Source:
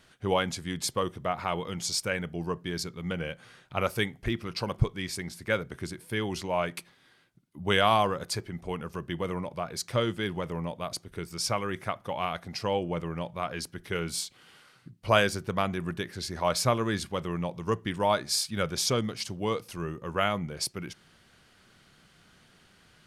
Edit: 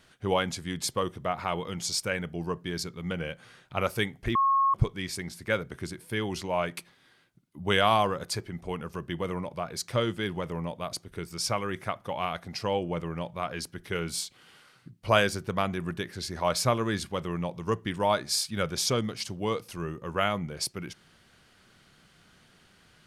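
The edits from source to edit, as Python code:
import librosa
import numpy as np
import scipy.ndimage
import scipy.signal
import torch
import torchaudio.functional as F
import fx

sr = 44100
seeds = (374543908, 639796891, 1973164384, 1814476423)

y = fx.edit(x, sr, fx.bleep(start_s=4.35, length_s=0.39, hz=1090.0, db=-20.0), tone=tone)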